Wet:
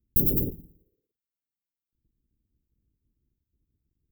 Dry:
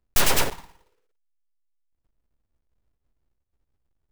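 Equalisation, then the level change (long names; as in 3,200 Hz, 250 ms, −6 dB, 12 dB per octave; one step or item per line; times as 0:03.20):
high-pass filter 69 Hz 6 dB per octave
inverse Chebyshev band-stop filter 1,000–6,900 Hz, stop band 60 dB
+6.0 dB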